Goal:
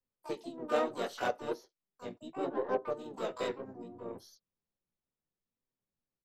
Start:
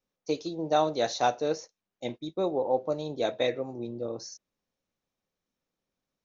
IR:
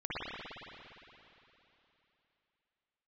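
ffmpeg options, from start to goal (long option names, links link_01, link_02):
-filter_complex "[0:a]aeval=exprs='0.251*(cos(1*acos(clip(val(0)/0.251,-1,1)))-cos(1*PI/2))+0.0708*(cos(2*acos(clip(val(0)/0.251,-1,1)))-cos(2*PI/2))+0.0224*(cos(4*acos(clip(val(0)/0.251,-1,1)))-cos(4*PI/2))+0.0141*(cos(7*acos(clip(val(0)/0.251,-1,1)))-cos(7*PI/2))+0.00224*(cos(8*acos(clip(val(0)/0.251,-1,1)))-cos(8*PI/2))':channel_layout=same,highshelf=frequency=2200:gain=-3.5,acrossover=split=240|1100|2800[link_01][link_02][link_03][link_04];[link_01]acompressor=threshold=-56dB:ratio=16[link_05];[link_05][link_02][link_03][link_04]amix=inputs=4:normalize=0,bass=frequency=250:gain=5,treble=frequency=4000:gain=-3,flanger=delay=7.8:depth=8.9:regen=3:speed=0.71:shape=sinusoidal,asplit=4[link_06][link_07][link_08][link_09];[link_07]asetrate=33038,aresample=44100,atempo=1.33484,volume=-7dB[link_10];[link_08]asetrate=35002,aresample=44100,atempo=1.25992,volume=-5dB[link_11];[link_09]asetrate=88200,aresample=44100,atempo=0.5,volume=-8dB[link_12];[link_06][link_10][link_11][link_12]amix=inputs=4:normalize=0,volume=-5dB"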